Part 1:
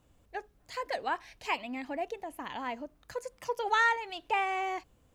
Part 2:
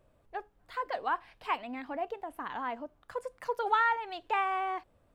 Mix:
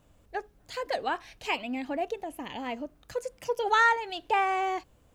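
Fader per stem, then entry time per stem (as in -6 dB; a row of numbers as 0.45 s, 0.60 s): +3.0 dB, -3.5 dB; 0.00 s, 0.00 s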